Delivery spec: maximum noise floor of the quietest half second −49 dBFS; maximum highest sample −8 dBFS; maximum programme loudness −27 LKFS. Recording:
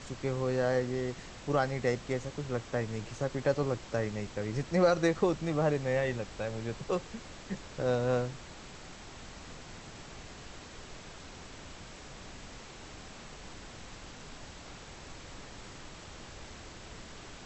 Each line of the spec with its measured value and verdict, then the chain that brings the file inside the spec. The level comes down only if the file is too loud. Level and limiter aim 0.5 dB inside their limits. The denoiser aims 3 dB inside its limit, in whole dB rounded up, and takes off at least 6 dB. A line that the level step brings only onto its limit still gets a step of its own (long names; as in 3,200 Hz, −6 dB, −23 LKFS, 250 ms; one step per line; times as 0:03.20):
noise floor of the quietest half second −48 dBFS: out of spec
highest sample −14.0 dBFS: in spec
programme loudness −32.0 LKFS: in spec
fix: broadband denoise 6 dB, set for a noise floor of −48 dBFS